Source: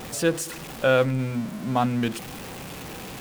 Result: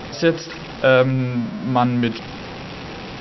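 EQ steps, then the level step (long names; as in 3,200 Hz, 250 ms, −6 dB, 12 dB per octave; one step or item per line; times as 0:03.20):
linear-phase brick-wall low-pass 5,800 Hz
+5.5 dB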